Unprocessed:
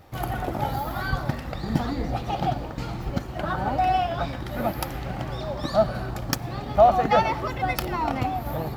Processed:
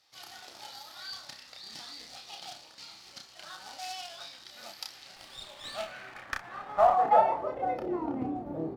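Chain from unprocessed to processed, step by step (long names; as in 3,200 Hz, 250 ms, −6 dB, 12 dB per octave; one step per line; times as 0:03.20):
ambience of single reflections 31 ms −3.5 dB, 62 ms −14.5 dB
floating-point word with a short mantissa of 2 bits
band-pass filter sweep 4,700 Hz → 330 Hz, 0:05.22–0:08.14
0:05.16–0:06.96: windowed peak hold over 3 samples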